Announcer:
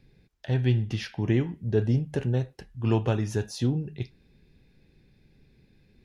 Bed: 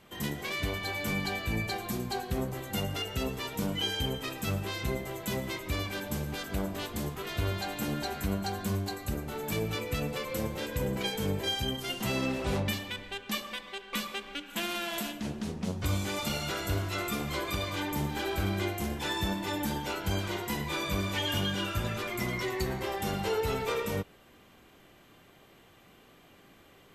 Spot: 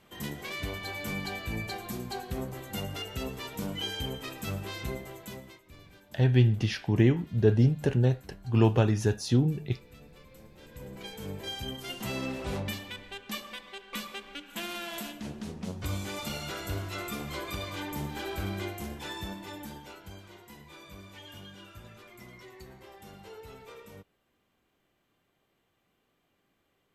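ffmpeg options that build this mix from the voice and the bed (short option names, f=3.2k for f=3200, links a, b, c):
-filter_complex "[0:a]adelay=5700,volume=2dB[a];[1:a]volume=14.5dB,afade=t=out:st=4.87:d=0.75:silence=0.125893,afade=t=in:st=10.52:d=1.42:silence=0.133352,afade=t=out:st=18.52:d=1.67:silence=0.211349[b];[a][b]amix=inputs=2:normalize=0"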